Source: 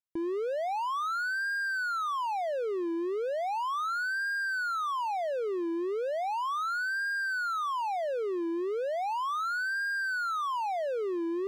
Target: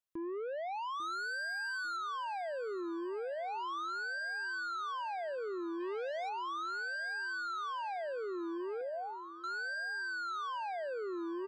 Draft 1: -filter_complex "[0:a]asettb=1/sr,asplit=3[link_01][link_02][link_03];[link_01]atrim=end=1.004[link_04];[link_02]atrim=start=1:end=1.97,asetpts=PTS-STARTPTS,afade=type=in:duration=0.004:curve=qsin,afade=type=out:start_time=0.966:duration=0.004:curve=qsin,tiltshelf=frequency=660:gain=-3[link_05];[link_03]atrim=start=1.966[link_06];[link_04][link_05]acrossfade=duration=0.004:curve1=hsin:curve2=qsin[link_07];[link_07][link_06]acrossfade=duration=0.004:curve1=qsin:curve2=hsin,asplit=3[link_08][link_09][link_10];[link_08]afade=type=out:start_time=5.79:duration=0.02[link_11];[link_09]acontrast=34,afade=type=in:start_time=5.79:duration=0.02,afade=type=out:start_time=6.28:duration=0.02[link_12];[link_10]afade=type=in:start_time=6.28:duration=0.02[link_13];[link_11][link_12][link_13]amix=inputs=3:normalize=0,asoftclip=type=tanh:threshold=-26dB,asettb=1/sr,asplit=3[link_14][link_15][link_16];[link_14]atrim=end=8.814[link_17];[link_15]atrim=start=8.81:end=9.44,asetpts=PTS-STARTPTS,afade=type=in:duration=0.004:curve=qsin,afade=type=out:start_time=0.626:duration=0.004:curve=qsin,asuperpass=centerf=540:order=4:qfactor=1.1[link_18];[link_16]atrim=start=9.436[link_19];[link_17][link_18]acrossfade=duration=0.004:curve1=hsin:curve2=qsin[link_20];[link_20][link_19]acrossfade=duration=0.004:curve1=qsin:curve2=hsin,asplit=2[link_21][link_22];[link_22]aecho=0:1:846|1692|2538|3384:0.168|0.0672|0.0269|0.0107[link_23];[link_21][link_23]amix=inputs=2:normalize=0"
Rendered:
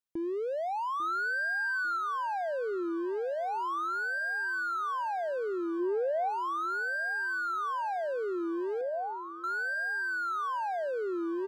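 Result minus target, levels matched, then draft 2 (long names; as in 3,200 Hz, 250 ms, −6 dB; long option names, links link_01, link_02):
soft clipping: distortion −10 dB
-filter_complex "[0:a]asettb=1/sr,asplit=3[link_01][link_02][link_03];[link_01]atrim=end=1.004[link_04];[link_02]atrim=start=1:end=1.97,asetpts=PTS-STARTPTS,afade=type=in:duration=0.004:curve=qsin,afade=type=out:start_time=0.966:duration=0.004:curve=qsin,tiltshelf=frequency=660:gain=-3[link_05];[link_03]atrim=start=1.966[link_06];[link_04][link_05]acrossfade=duration=0.004:curve1=hsin:curve2=qsin[link_07];[link_07][link_06]acrossfade=duration=0.004:curve1=qsin:curve2=hsin,asplit=3[link_08][link_09][link_10];[link_08]afade=type=out:start_time=5.79:duration=0.02[link_11];[link_09]acontrast=34,afade=type=in:start_time=5.79:duration=0.02,afade=type=out:start_time=6.28:duration=0.02[link_12];[link_10]afade=type=in:start_time=6.28:duration=0.02[link_13];[link_11][link_12][link_13]amix=inputs=3:normalize=0,asoftclip=type=tanh:threshold=-37dB,asettb=1/sr,asplit=3[link_14][link_15][link_16];[link_14]atrim=end=8.814[link_17];[link_15]atrim=start=8.81:end=9.44,asetpts=PTS-STARTPTS,afade=type=in:duration=0.004:curve=qsin,afade=type=out:start_time=0.626:duration=0.004:curve=qsin,asuperpass=centerf=540:order=4:qfactor=1.1[link_18];[link_16]atrim=start=9.436[link_19];[link_17][link_18]acrossfade=duration=0.004:curve1=hsin:curve2=qsin[link_20];[link_20][link_19]acrossfade=duration=0.004:curve1=qsin:curve2=hsin,asplit=2[link_21][link_22];[link_22]aecho=0:1:846|1692|2538|3384:0.168|0.0672|0.0269|0.0107[link_23];[link_21][link_23]amix=inputs=2:normalize=0"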